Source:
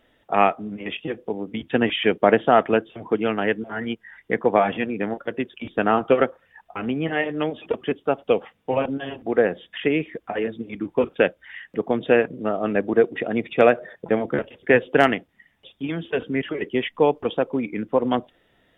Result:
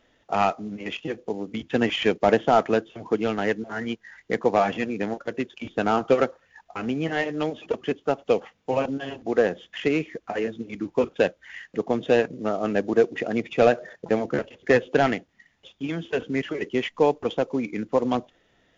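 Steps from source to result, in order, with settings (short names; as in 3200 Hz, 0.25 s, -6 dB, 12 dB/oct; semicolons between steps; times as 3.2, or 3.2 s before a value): CVSD 64 kbps; gain -1.5 dB; WMA 128 kbps 16000 Hz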